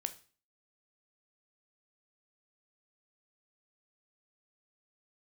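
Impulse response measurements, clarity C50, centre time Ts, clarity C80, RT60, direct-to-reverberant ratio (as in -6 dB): 15.5 dB, 5 ms, 21.0 dB, 0.40 s, 9.0 dB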